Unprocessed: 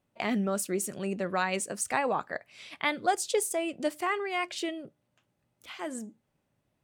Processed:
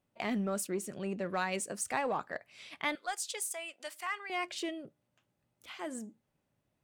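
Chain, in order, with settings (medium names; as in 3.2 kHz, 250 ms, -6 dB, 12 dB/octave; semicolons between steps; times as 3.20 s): 2.95–4.30 s: high-pass 1.1 kHz 12 dB/octave; in parallel at -9 dB: hard clipper -31 dBFS, distortion -7 dB; 0.66–1.25 s: on the sum: treble shelf 4.5 kHz -> 9 kHz -8.5 dB; trim -6 dB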